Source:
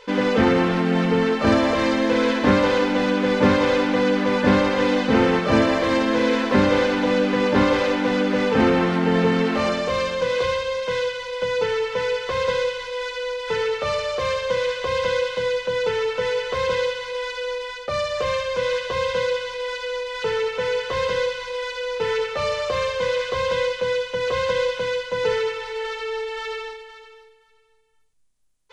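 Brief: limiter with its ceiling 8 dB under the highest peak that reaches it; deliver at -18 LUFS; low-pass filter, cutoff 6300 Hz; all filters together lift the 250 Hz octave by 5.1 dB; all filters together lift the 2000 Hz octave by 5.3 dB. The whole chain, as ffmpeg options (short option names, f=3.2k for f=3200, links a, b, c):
-af "lowpass=6.3k,equalizer=f=250:t=o:g=6,equalizer=f=2k:t=o:g=6.5,volume=2dB,alimiter=limit=-7dB:level=0:latency=1"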